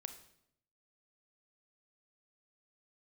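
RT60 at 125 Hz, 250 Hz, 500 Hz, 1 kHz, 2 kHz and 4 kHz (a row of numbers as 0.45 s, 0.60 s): 1.0 s, 0.90 s, 0.80 s, 0.70 s, 0.65 s, 0.65 s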